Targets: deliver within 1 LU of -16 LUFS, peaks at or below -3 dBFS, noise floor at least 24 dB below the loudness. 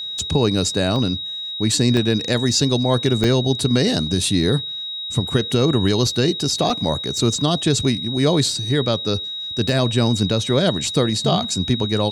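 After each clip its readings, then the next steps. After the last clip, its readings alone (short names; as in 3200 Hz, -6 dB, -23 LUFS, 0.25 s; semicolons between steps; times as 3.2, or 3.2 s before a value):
dropouts 6; longest dropout 1.2 ms; steady tone 3800 Hz; tone level -26 dBFS; loudness -19.0 LUFS; peak -5.5 dBFS; loudness target -16.0 LUFS
-> interpolate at 0.19/0.96/1.97/3.24/6.7/9.69, 1.2 ms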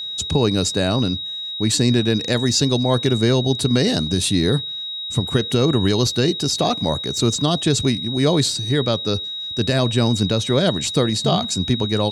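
dropouts 0; steady tone 3800 Hz; tone level -26 dBFS
-> notch 3800 Hz, Q 30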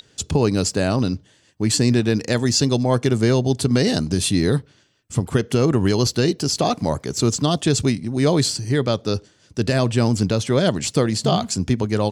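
steady tone none; loudness -20.0 LUFS; peak -6.0 dBFS; loudness target -16.0 LUFS
-> gain +4 dB; limiter -3 dBFS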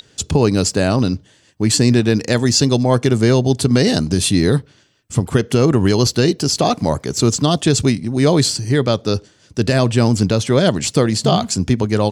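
loudness -16.0 LUFS; peak -3.0 dBFS; noise floor -53 dBFS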